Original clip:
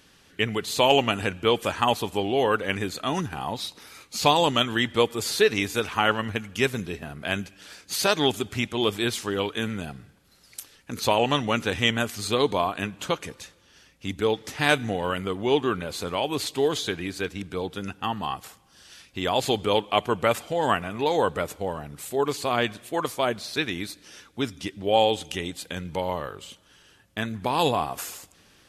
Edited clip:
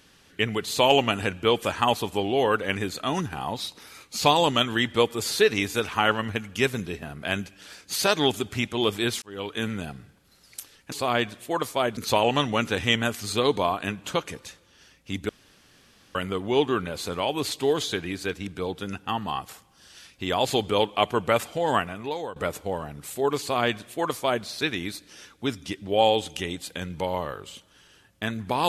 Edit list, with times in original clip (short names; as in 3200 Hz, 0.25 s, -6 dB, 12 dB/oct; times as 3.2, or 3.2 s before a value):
9.22–9.63 fade in
14.24–15.1 room tone
20.67–21.31 fade out linear, to -17.5 dB
22.35–23.4 copy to 10.92